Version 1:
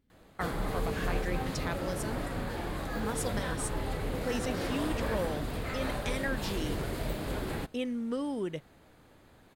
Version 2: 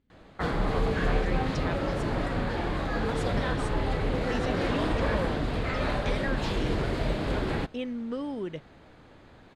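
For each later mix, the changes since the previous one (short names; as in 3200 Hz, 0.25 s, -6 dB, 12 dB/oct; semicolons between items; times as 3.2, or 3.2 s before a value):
background +6.0 dB; master: add LPF 4800 Hz 12 dB/oct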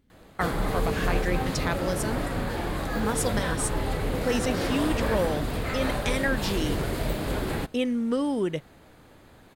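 speech +7.5 dB; master: remove LPF 4800 Hz 12 dB/oct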